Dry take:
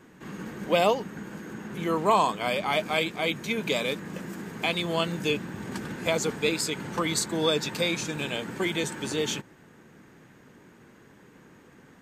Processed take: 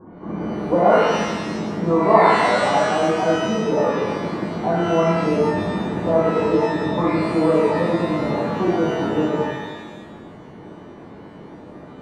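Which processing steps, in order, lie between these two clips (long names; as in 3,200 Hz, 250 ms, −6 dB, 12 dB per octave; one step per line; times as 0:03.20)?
Butterworth low-pass 1,100 Hz 36 dB per octave
in parallel at +2 dB: downward compressor, threshold −38 dBFS, peak gain reduction 18 dB
on the sum: reverb with rising layers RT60 1.2 s, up +12 semitones, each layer −8 dB, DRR −7 dB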